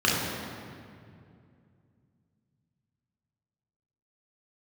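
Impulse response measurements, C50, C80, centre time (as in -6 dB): -0.5 dB, 1.5 dB, 117 ms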